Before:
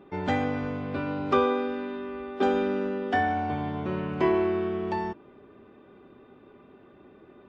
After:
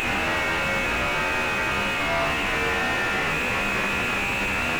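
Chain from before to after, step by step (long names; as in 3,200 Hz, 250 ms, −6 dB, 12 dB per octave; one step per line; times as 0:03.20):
sign of each sample alone
steady tone 1,500 Hz −56 dBFS
on a send: flutter between parallel walls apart 4 metres, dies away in 1.4 s
on the sum: phase-vocoder stretch with locked phases 0.64×
voice inversion scrambler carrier 2,900 Hz
slew-rate limiting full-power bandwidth 47 Hz
level +8.5 dB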